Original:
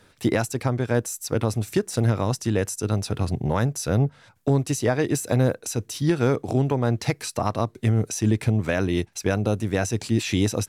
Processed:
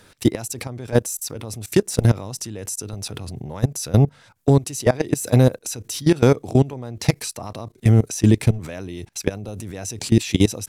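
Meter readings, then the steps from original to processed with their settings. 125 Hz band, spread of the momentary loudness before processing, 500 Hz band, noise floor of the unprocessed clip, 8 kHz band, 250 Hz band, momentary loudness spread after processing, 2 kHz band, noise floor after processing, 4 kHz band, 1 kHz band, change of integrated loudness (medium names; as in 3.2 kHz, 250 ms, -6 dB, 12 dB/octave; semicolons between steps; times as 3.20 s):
+3.5 dB, 4 LU, +2.0 dB, -58 dBFS, +3.0 dB, +3.0 dB, 14 LU, -1.5 dB, -54 dBFS, +3.0 dB, -2.0 dB, +3.0 dB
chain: dynamic bell 1.5 kHz, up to -5 dB, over -42 dBFS, Q 1.9; level held to a coarse grid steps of 20 dB; treble shelf 4.8 kHz +5.5 dB; trim +8 dB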